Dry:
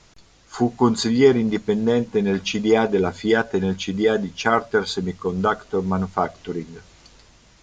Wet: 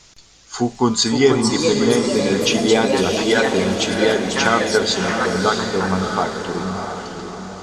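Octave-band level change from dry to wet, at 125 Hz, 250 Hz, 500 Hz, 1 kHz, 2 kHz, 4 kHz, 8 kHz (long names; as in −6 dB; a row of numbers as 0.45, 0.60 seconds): +2.0, +2.0, +2.5, +3.5, +6.0, +9.5, +12.5 decibels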